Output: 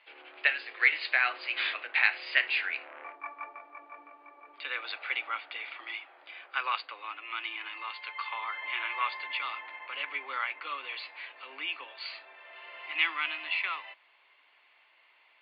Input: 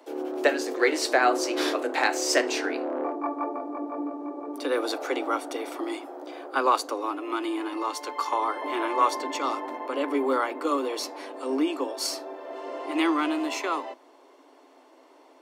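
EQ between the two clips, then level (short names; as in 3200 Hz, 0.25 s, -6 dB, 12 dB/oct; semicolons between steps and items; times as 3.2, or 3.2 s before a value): resonant high-pass 2400 Hz, resonance Q 2.6; brick-wall FIR low-pass 5000 Hz; air absorption 420 m; +4.5 dB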